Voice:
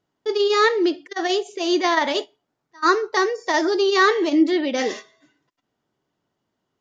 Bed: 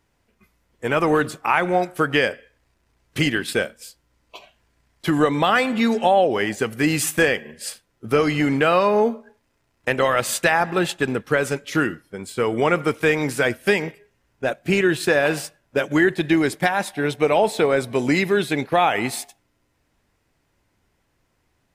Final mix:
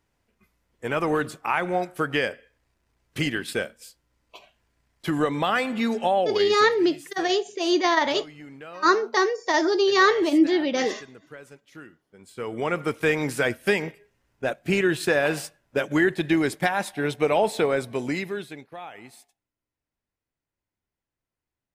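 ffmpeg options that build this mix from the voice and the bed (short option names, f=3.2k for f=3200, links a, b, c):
-filter_complex "[0:a]adelay=6000,volume=-1.5dB[a];[1:a]volume=14.5dB,afade=t=out:st=6.15:d=0.66:silence=0.125893,afade=t=in:st=12.06:d=1.04:silence=0.1,afade=t=out:st=17.59:d=1.06:silence=0.125893[b];[a][b]amix=inputs=2:normalize=0"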